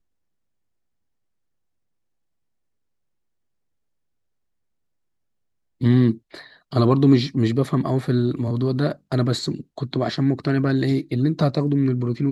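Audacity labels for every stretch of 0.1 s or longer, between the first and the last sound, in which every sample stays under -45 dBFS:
6.180000	6.330000	silence
6.560000	6.720000	silence
8.960000	9.120000	silence
9.630000	9.770000	silence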